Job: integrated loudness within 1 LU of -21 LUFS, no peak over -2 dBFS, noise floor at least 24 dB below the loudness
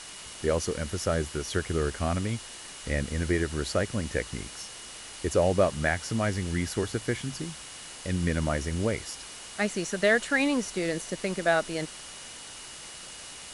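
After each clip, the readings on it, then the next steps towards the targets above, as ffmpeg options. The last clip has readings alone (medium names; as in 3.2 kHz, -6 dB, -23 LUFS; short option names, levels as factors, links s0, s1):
steady tone 2.9 kHz; tone level -51 dBFS; noise floor -44 dBFS; noise floor target -53 dBFS; loudness -29.0 LUFS; peak level -10.5 dBFS; loudness target -21.0 LUFS
-> -af "bandreject=f=2900:w=30"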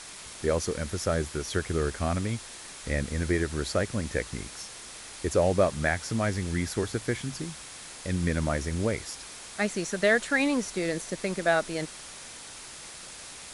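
steady tone not found; noise floor -44 dBFS; noise floor target -53 dBFS
-> -af "afftdn=nr=9:nf=-44"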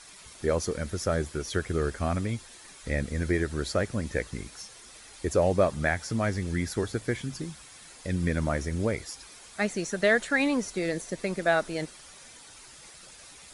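noise floor -50 dBFS; noise floor target -53 dBFS
-> -af "afftdn=nr=6:nf=-50"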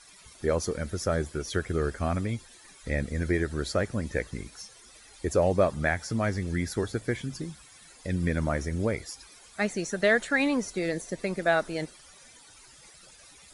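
noise floor -53 dBFS; loudness -29.0 LUFS; peak level -10.5 dBFS; loudness target -21.0 LUFS
-> -af "volume=2.51"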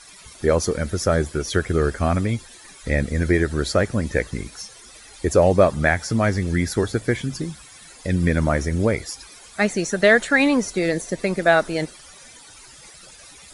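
loudness -21.0 LUFS; peak level -2.5 dBFS; noise floor -45 dBFS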